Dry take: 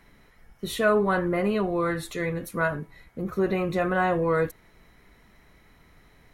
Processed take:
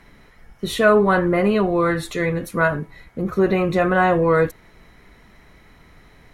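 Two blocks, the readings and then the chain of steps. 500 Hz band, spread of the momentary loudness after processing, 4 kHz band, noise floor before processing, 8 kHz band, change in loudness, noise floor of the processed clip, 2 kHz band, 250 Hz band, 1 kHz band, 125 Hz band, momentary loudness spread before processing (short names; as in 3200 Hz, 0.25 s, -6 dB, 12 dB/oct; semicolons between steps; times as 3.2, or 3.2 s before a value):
+7.0 dB, 12 LU, +6.5 dB, -58 dBFS, +4.5 dB, +7.0 dB, -51 dBFS, +7.0 dB, +7.0 dB, +7.0 dB, +7.0 dB, 11 LU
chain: high shelf 12000 Hz -10 dB; gain +7 dB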